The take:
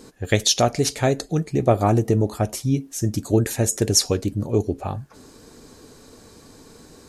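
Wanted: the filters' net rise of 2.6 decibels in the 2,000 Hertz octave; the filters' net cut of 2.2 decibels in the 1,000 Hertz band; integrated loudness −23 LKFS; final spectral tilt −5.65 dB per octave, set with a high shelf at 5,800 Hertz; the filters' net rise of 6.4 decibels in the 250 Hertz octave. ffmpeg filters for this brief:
ffmpeg -i in.wav -af "equalizer=frequency=250:width_type=o:gain=8.5,equalizer=frequency=1000:width_type=o:gain=-5.5,equalizer=frequency=2000:width_type=o:gain=5,highshelf=frequency=5800:gain=-6,volume=-4dB" out.wav

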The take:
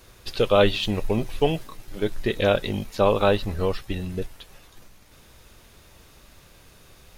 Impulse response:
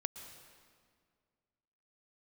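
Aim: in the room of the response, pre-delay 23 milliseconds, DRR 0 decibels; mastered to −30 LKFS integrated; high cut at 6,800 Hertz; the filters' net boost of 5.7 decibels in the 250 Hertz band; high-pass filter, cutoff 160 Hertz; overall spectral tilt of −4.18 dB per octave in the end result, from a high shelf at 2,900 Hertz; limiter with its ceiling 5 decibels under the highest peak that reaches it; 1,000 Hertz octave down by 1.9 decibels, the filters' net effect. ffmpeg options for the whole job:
-filter_complex "[0:a]highpass=160,lowpass=6800,equalizer=frequency=250:width_type=o:gain=9,equalizer=frequency=1000:width_type=o:gain=-4,highshelf=frequency=2900:gain=5,alimiter=limit=-8.5dB:level=0:latency=1,asplit=2[link_01][link_02];[1:a]atrim=start_sample=2205,adelay=23[link_03];[link_02][link_03]afir=irnorm=-1:irlink=0,volume=0.5dB[link_04];[link_01][link_04]amix=inputs=2:normalize=0,volume=-9dB"

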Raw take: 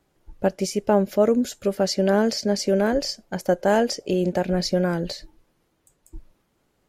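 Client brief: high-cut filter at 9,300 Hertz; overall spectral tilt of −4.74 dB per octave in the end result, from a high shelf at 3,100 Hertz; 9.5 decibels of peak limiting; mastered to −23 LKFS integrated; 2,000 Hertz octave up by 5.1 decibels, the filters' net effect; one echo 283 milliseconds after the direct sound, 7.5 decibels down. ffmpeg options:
ffmpeg -i in.wav -af "lowpass=9300,equalizer=frequency=2000:width_type=o:gain=9,highshelf=frequency=3100:gain=-5.5,alimiter=limit=-15dB:level=0:latency=1,aecho=1:1:283:0.422,volume=2.5dB" out.wav

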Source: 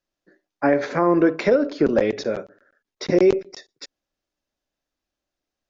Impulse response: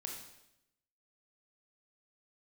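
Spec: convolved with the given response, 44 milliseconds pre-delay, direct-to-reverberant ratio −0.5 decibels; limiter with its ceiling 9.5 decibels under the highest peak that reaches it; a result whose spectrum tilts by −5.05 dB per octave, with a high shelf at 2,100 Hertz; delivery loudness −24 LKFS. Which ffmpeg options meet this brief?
-filter_complex "[0:a]highshelf=frequency=2100:gain=-3.5,alimiter=limit=-17dB:level=0:latency=1,asplit=2[link_01][link_02];[1:a]atrim=start_sample=2205,adelay=44[link_03];[link_02][link_03]afir=irnorm=-1:irlink=0,volume=2.5dB[link_04];[link_01][link_04]amix=inputs=2:normalize=0"

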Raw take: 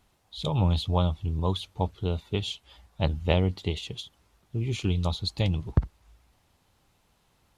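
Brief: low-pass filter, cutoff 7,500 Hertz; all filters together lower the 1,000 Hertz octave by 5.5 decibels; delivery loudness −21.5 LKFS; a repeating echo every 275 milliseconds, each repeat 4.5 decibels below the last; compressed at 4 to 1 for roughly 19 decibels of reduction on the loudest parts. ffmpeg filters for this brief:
ffmpeg -i in.wav -af "lowpass=7500,equalizer=frequency=1000:width_type=o:gain=-7,acompressor=threshold=-39dB:ratio=4,aecho=1:1:275|550|825|1100|1375|1650|1925|2200|2475:0.596|0.357|0.214|0.129|0.0772|0.0463|0.0278|0.0167|0.01,volume=19.5dB" out.wav

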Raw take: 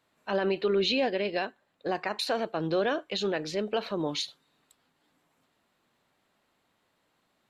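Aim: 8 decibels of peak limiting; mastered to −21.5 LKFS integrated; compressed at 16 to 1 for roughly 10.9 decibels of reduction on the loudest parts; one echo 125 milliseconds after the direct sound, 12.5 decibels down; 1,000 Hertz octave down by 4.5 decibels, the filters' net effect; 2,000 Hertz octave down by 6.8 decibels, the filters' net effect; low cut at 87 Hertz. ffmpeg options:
ffmpeg -i in.wav -af "highpass=87,equalizer=frequency=1000:width_type=o:gain=-5.5,equalizer=frequency=2000:width_type=o:gain=-7.5,acompressor=threshold=-34dB:ratio=16,alimiter=level_in=6.5dB:limit=-24dB:level=0:latency=1,volume=-6.5dB,aecho=1:1:125:0.237,volume=19dB" out.wav

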